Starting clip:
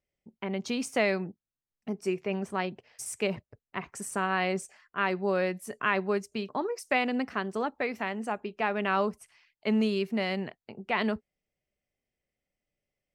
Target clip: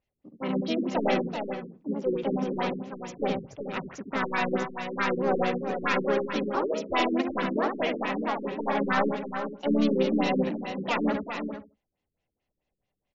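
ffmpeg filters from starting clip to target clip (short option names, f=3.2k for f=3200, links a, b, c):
-filter_complex "[0:a]volume=23dB,asoftclip=hard,volume=-23dB,asplit=2[a][b];[b]adelay=72,lowpass=f=3.1k:p=1,volume=-4.5dB,asplit=2[c][d];[d]adelay=72,lowpass=f=3.1k:p=1,volume=0.21,asplit=2[e][f];[f]adelay=72,lowpass=f=3.1k:p=1,volume=0.21[g];[c][e][g]amix=inputs=3:normalize=0[h];[a][h]amix=inputs=2:normalize=0,asplit=3[i][j][k];[j]asetrate=37084,aresample=44100,atempo=1.18921,volume=-12dB[l];[k]asetrate=58866,aresample=44100,atempo=0.749154,volume=0dB[m];[i][l][m]amix=inputs=3:normalize=0,asplit=2[n][o];[o]aecho=0:1:384:0.422[p];[n][p]amix=inputs=2:normalize=0,afftfilt=real='re*lt(b*sr/1024,430*pow(7500/430,0.5+0.5*sin(2*PI*4.6*pts/sr)))':imag='im*lt(b*sr/1024,430*pow(7500/430,0.5+0.5*sin(2*PI*4.6*pts/sr)))':win_size=1024:overlap=0.75"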